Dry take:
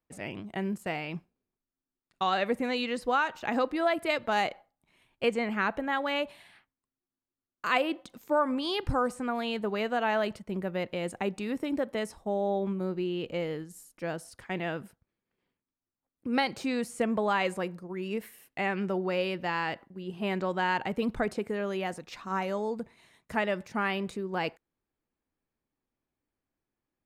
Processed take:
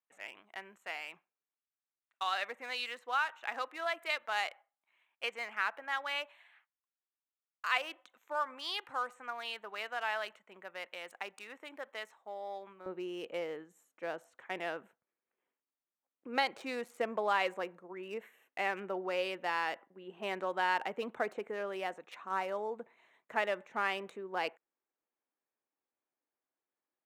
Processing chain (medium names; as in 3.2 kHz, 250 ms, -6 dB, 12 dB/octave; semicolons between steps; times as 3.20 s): local Wiener filter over 9 samples; high-pass 1.1 kHz 12 dB/octave, from 12.86 s 480 Hz; trim -2 dB